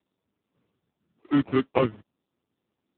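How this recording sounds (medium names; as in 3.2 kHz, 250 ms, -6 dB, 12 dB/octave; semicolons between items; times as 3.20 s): phasing stages 4, 0.86 Hz, lowest notch 580–1500 Hz; aliases and images of a low sample rate 1.6 kHz, jitter 0%; AMR-NB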